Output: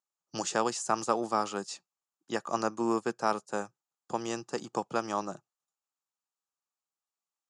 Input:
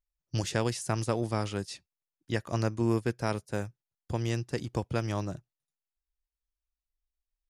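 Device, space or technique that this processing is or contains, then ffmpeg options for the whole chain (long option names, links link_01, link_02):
television speaker: -af "highpass=frequency=200:width=0.5412,highpass=frequency=200:width=1.3066,equalizer=frequency=270:width_type=q:width=4:gain=-5,equalizer=frequency=820:width_type=q:width=4:gain=8,equalizer=frequency=1200:width_type=q:width=4:gain=10,equalizer=frequency=2100:width_type=q:width=4:gain=-8,equalizer=frequency=3500:width_type=q:width=4:gain=-3,equalizer=frequency=7100:width_type=q:width=4:gain=8,lowpass=frequency=8700:width=0.5412,lowpass=frequency=8700:width=1.3066"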